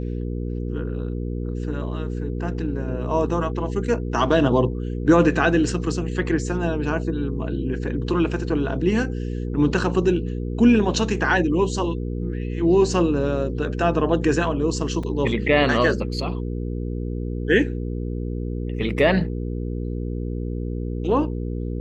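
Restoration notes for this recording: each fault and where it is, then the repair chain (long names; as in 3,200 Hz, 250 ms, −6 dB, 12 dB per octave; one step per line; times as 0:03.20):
mains hum 60 Hz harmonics 8 −27 dBFS
0:15.03: drop-out 4.5 ms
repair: hum removal 60 Hz, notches 8
repair the gap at 0:15.03, 4.5 ms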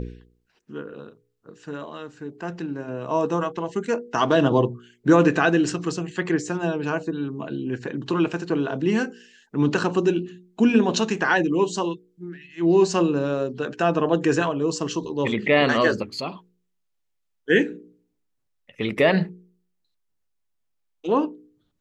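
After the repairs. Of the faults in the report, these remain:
none of them is left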